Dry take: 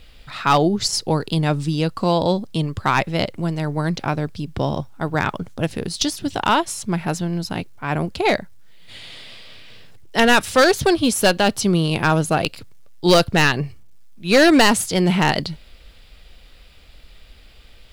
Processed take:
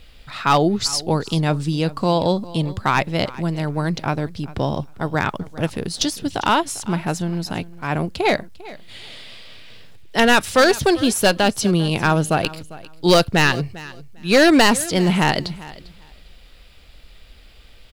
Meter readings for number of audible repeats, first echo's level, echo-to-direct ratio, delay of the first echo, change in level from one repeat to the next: 2, -19.0 dB, -19.0 dB, 399 ms, -15.5 dB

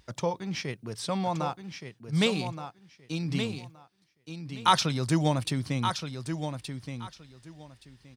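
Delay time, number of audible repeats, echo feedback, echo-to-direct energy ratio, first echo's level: 1172 ms, 2, 18%, -8.0 dB, -8.0 dB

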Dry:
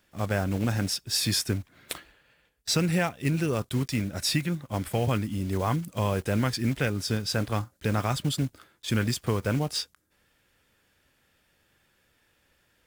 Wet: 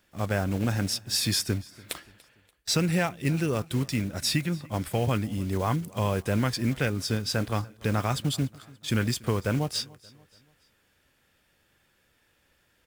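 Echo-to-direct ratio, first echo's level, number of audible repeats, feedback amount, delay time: -22.0 dB, -23.0 dB, 2, 44%, 289 ms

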